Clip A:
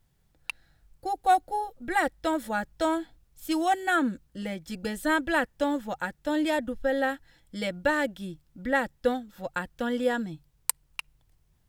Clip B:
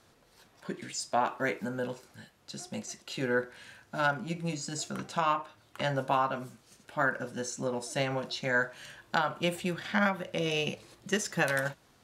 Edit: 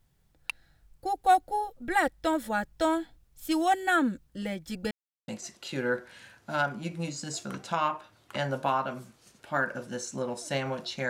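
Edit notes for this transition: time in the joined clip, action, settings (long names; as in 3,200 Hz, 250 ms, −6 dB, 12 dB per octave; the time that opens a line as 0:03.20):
clip A
0:04.91–0:05.28: silence
0:05.28: continue with clip B from 0:02.73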